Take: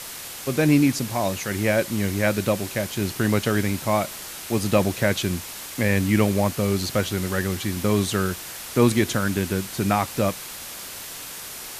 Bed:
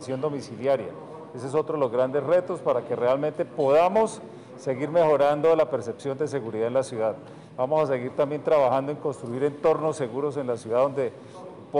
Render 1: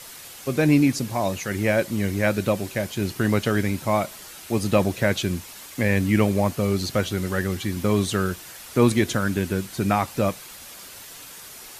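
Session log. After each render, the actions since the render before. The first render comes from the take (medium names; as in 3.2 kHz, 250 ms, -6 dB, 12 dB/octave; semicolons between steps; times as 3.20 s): noise reduction 7 dB, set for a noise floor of -37 dBFS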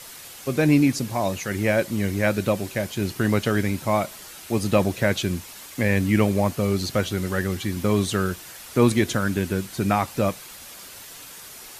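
no audible change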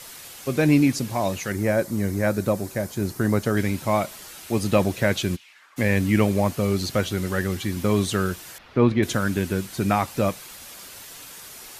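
1.52–3.57 s: peaking EQ 2.9 kHz -11 dB 1 oct; 5.35–5.76 s: band-pass filter 3.5 kHz -> 1.1 kHz, Q 2.8; 8.58–9.03 s: distance through air 310 m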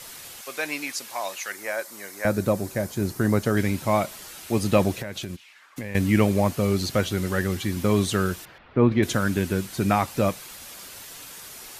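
0.41–2.25 s: high-pass 880 Hz; 4.97–5.95 s: compression 16:1, threshold -28 dBFS; 8.45–8.92 s: distance through air 330 m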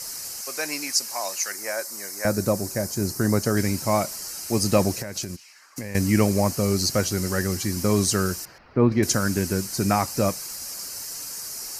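resonant high shelf 4.2 kHz +6.5 dB, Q 3; band-stop 3.5 kHz, Q 10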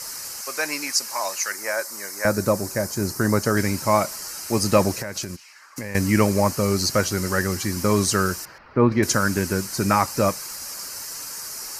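peaking EQ 1.2 kHz +6.5 dB 2 oct; band-stop 720 Hz, Q 12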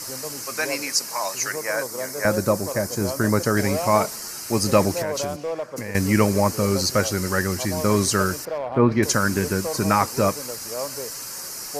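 add bed -8.5 dB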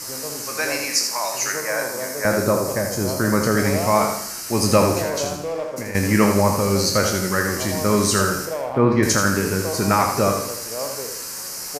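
spectral sustain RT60 0.32 s; on a send: feedback delay 81 ms, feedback 43%, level -6 dB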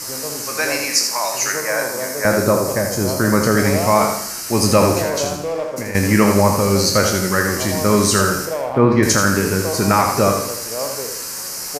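trim +3.5 dB; peak limiter -2 dBFS, peak gain reduction 2.5 dB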